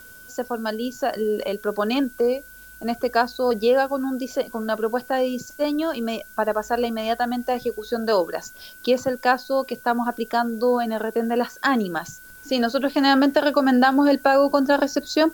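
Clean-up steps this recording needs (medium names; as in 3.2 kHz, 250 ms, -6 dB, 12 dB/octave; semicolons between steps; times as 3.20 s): band-stop 1.5 kHz, Q 30; noise print and reduce 22 dB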